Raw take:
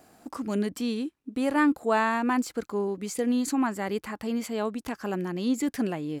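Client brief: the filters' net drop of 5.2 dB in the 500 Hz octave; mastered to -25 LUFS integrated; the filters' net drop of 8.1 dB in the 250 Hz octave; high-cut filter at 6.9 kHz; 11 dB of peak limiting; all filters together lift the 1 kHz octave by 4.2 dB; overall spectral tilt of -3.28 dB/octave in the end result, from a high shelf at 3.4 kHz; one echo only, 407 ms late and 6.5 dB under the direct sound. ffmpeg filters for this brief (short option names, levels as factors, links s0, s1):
-af "lowpass=6900,equalizer=f=250:t=o:g=-8,equalizer=f=500:t=o:g=-6.5,equalizer=f=1000:t=o:g=6.5,highshelf=f=3400:g=6.5,alimiter=limit=0.0841:level=0:latency=1,aecho=1:1:407:0.473,volume=2.51"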